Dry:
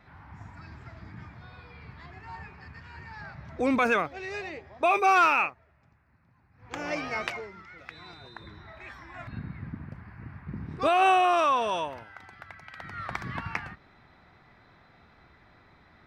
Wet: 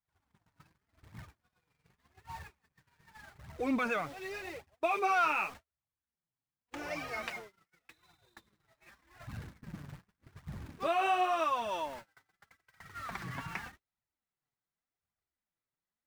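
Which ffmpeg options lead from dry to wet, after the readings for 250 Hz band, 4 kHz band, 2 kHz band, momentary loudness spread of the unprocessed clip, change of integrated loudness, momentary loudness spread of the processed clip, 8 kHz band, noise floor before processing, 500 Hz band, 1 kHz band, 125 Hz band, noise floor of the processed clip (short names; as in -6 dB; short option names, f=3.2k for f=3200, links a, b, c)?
-6.5 dB, -7.5 dB, -8.0 dB, 25 LU, -7.5 dB, 21 LU, -5.5 dB, -63 dBFS, -7.5 dB, -8.0 dB, -7.5 dB, under -85 dBFS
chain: -af "aeval=exprs='val(0)+0.5*0.015*sgn(val(0))':c=same,flanger=delay=0.8:depth=6.7:regen=9:speed=0.86:shape=triangular,agate=range=-48dB:threshold=-39dB:ratio=16:detection=peak,volume=-5.5dB"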